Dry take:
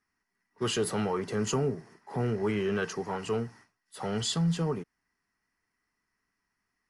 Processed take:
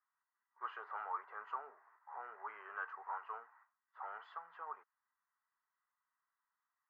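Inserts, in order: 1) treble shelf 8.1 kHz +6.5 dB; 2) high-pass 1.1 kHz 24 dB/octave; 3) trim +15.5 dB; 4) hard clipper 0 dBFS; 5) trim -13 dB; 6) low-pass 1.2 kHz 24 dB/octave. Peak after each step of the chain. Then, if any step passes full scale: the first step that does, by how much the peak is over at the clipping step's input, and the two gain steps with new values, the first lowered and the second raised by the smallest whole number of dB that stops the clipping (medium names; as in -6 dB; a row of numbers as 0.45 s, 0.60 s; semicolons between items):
-18.0 dBFS, -17.5 dBFS, -2.0 dBFS, -2.0 dBFS, -15.0 dBFS, -28.5 dBFS; nothing clips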